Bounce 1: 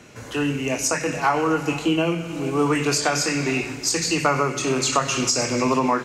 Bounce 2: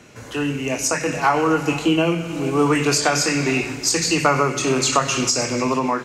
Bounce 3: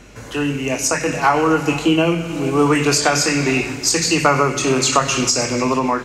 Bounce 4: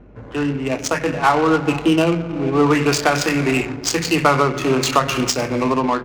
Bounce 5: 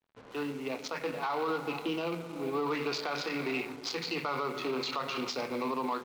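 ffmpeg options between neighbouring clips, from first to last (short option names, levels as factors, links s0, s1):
-af "dynaudnorm=f=210:g=9:m=1.5"
-af "aeval=exprs='val(0)+0.00398*(sin(2*PI*50*n/s)+sin(2*PI*2*50*n/s)/2+sin(2*PI*3*50*n/s)/3+sin(2*PI*4*50*n/s)/4+sin(2*PI*5*50*n/s)/5)':c=same,volume=1.33"
-af "adynamicsmooth=sensitivity=1.5:basefreq=770"
-af "highpass=290,equalizer=f=320:t=q:w=4:g=-6,equalizer=f=630:t=q:w=4:g=-6,equalizer=f=1700:t=q:w=4:g=-8,equalizer=f=2900:t=q:w=4:g=-4,equalizer=f=4100:t=q:w=4:g=5,lowpass=f=4700:w=0.5412,lowpass=f=4700:w=1.3066,acrusher=bits=6:mix=0:aa=0.5,alimiter=limit=0.178:level=0:latency=1:release=34,volume=0.355"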